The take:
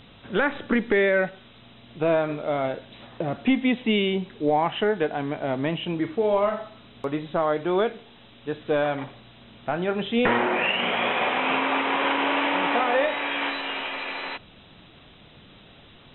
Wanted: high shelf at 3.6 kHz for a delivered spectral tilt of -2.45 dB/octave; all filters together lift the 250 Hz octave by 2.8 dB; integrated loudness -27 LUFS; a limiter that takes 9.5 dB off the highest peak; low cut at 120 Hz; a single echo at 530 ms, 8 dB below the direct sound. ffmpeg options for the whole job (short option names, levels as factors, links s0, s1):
-af "highpass=120,equalizer=f=250:t=o:g=3.5,highshelf=f=3600:g=8.5,alimiter=limit=0.15:level=0:latency=1,aecho=1:1:530:0.398,volume=0.944"